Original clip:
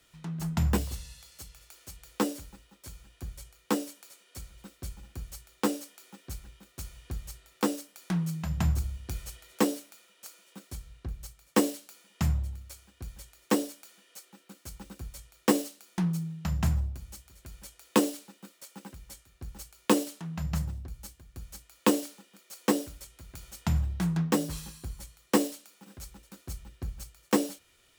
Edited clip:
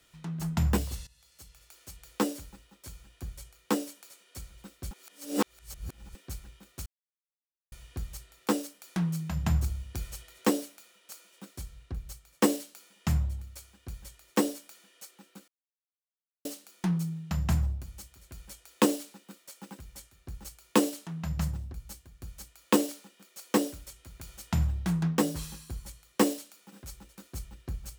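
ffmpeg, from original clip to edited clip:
-filter_complex "[0:a]asplit=7[s0][s1][s2][s3][s4][s5][s6];[s0]atrim=end=1.07,asetpts=PTS-STARTPTS,afade=t=out:st=1.066:d=0.004:c=hsin:silence=0.133352[s7];[s1]atrim=start=1.07:end=4.912,asetpts=PTS-STARTPTS,afade=t=in:d=1.22:c=qsin:silence=0.133352[s8];[s2]atrim=start=4.908:end=6.152,asetpts=PTS-STARTPTS,areverse[s9];[s3]atrim=start=6.148:end=6.86,asetpts=PTS-STARTPTS,afade=t=out:st=0.708:d=0.004:c=hsin,apad=pad_dur=0.86[s10];[s4]atrim=start=6.86:end=14.62,asetpts=PTS-STARTPTS,afade=t=in:d=0.004:c=hsin,afade=t=out:st=7.756:d=0.004:c=hsin[s11];[s5]atrim=start=14.62:end=15.59,asetpts=PTS-STARTPTS,volume=0[s12];[s6]atrim=start=15.59,asetpts=PTS-STARTPTS,afade=t=in:d=0.004:c=hsin[s13];[s7][s8]concat=n=2:v=0:a=1[s14];[s14][s9]acrossfade=d=0.004:c1=hsin:c2=hsin[s15];[s10][s11][s12][s13]concat=n=4:v=0:a=1[s16];[s15][s16]acrossfade=d=0.004:c1=hsin:c2=hsin"

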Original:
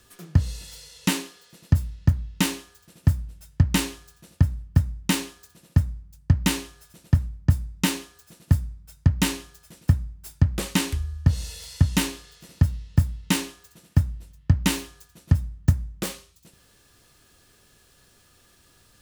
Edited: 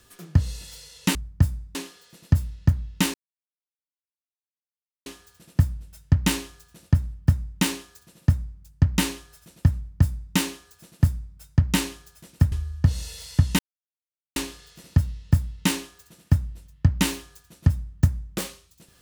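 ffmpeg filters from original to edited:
-filter_complex "[0:a]asplit=6[s0][s1][s2][s3][s4][s5];[s0]atrim=end=1.152[s6];[s1]atrim=start=7.228:end=7.832[s7];[s2]atrim=start=1.148:end=2.54,asetpts=PTS-STARTPTS,afade=t=out:st=1.388:d=0.004:c=hsin,apad=pad_dur=1.92[s8];[s3]atrim=start=2.54:end=10.002,asetpts=PTS-STARTPTS,afade=t=in:d=0.004:c=hsin[s9];[s4]atrim=start=10.938:end=12.01,asetpts=PTS-STARTPTS,afade=t=out:st=1.068:d=0.004:c=hsin,apad=pad_dur=0.77[s10];[s5]atrim=start=12.01,asetpts=PTS-STARTPTS,afade=t=in:d=0.004:c=hsin[s11];[s6][s7]acrossfade=d=0.004:c1=hsin:c2=hsin[s12];[s8][s9]concat=n=2:v=0:a=1[s13];[s12][s13]acrossfade=d=0.004:c1=hsin:c2=hsin[s14];[s10][s11]concat=n=2:v=0:a=1[s15];[s14][s15]acrossfade=d=0.004:c1=hsin:c2=hsin"

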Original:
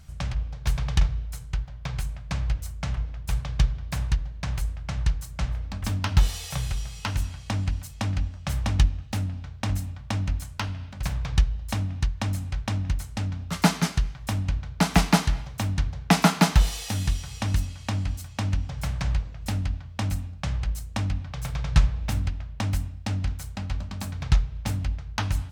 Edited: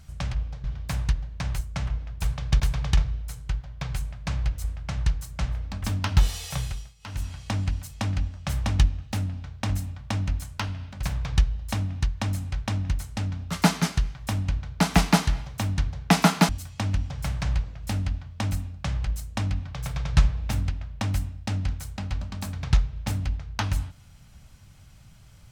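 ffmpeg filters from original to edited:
-filter_complex "[0:a]asplit=8[s0][s1][s2][s3][s4][s5][s6][s7];[s0]atrim=end=0.642[s8];[s1]atrim=start=3.668:end=4.642[s9];[s2]atrim=start=2.678:end=3.672[s10];[s3]atrim=start=0.638:end=2.682[s11];[s4]atrim=start=4.638:end=6.94,asetpts=PTS-STARTPTS,afade=t=out:st=1.952:d=0.35:silence=0.112202[s12];[s5]atrim=start=6.94:end=6.99,asetpts=PTS-STARTPTS,volume=0.112[s13];[s6]atrim=start=6.99:end=16.492,asetpts=PTS-STARTPTS,afade=t=in:d=0.35:silence=0.112202[s14];[s7]atrim=start=18.078[s15];[s8][s9]acrossfade=d=0.004:c1=hsin:c2=hsin[s16];[s16][s10]acrossfade=d=0.004:c1=hsin:c2=hsin[s17];[s17][s11]acrossfade=d=0.004:c1=hsin:c2=hsin[s18];[s12][s13][s14]concat=n=3:v=0:a=1[s19];[s18][s19]acrossfade=d=0.004:c1=hsin:c2=hsin[s20];[s20][s15]acrossfade=d=0.004:c1=hsin:c2=hsin"

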